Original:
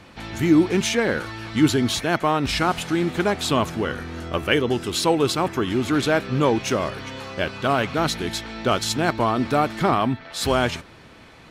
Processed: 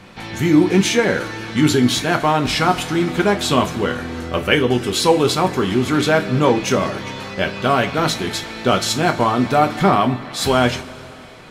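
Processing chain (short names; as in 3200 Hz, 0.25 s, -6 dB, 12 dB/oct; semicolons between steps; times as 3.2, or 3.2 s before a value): two-slope reverb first 0.22 s, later 3.3 s, from -22 dB, DRR 3.5 dB; gain +3 dB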